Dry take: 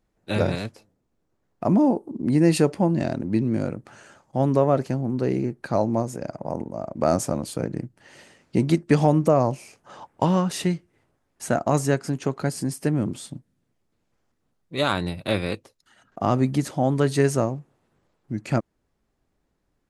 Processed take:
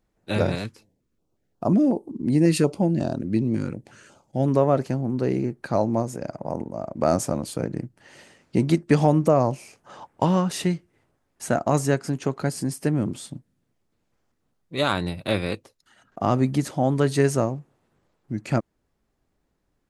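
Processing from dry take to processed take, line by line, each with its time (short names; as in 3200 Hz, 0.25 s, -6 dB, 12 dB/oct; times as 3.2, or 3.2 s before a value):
0.64–4.48 stepped notch 5.5 Hz 650–2100 Hz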